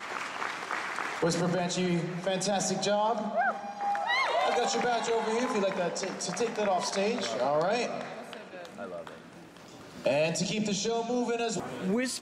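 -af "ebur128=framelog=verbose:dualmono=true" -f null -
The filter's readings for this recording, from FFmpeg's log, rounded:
Integrated loudness:
  I:         -26.6 LUFS
  Threshold: -37.3 LUFS
Loudness range:
  LRA:         4.5 LU
  Threshold: -47.1 LUFS
  LRA low:   -30.0 LUFS
  LRA high:  -25.5 LUFS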